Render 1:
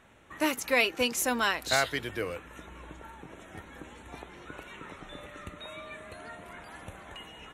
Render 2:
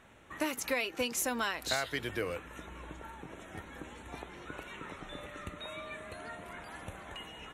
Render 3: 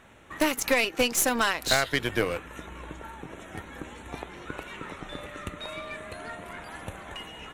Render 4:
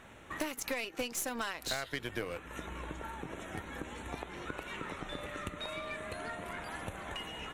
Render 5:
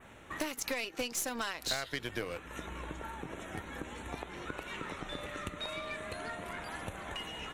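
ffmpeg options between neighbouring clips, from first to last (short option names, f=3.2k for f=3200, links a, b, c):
-af "acompressor=threshold=-29dB:ratio=6"
-af "aeval=exprs='0.126*(cos(1*acos(clip(val(0)/0.126,-1,1)))-cos(1*PI/2))+0.0398*(cos(5*acos(clip(val(0)/0.126,-1,1)))-cos(5*PI/2))+0.00891*(cos(6*acos(clip(val(0)/0.126,-1,1)))-cos(6*PI/2))+0.0316*(cos(7*acos(clip(val(0)/0.126,-1,1)))-cos(7*PI/2))':c=same,volume=6.5dB"
-af "acompressor=threshold=-37dB:ratio=3"
-af "adynamicequalizer=threshold=0.00251:dfrequency=4900:dqfactor=1.2:tfrequency=4900:tqfactor=1.2:attack=5:release=100:ratio=0.375:range=2:mode=boostabove:tftype=bell"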